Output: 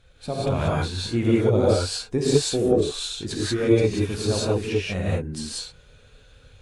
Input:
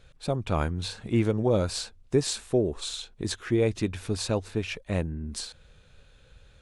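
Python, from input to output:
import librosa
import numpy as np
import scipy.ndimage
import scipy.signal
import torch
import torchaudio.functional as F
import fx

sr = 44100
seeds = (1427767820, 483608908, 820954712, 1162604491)

y = fx.spec_quant(x, sr, step_db=15)
y = fx.rev_gated(y, sr, seeds[0], gate_ms=210, shape='rising', drr_db=-6.0)
y = fx.cheby_harmonics(y, sr, harmonics=(3,), levels_db=(-25,), full_scale_db=-3.0)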